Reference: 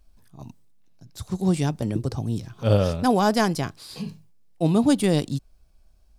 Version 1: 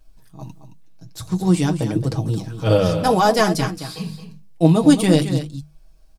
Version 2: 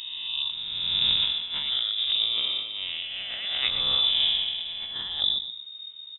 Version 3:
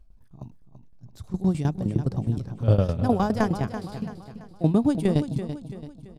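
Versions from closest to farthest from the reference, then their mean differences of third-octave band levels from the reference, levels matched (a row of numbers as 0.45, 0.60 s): 1, 3, 2; 3.5, 6.5, 17.5 dB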